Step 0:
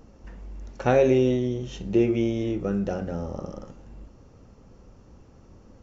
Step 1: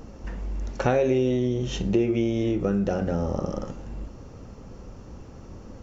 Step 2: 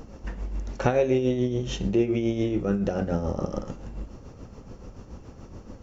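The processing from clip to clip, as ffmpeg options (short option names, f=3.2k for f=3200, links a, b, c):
-af "acompressor=threshold=-31dB:ratio=3,volume=8.5dB"
-af "tremolo=f=7:d=0.54,volume=1.5dB"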